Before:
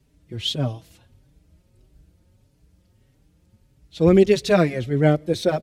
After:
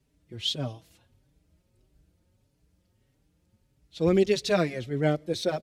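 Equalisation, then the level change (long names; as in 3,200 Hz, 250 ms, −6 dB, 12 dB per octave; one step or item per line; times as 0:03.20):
low-shelf EQ 170 Hz −4.5 dB
dynamic equaliser 4,900 Hz, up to +5 dB, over −43 dBFS, Q 0.89
−6.5 dB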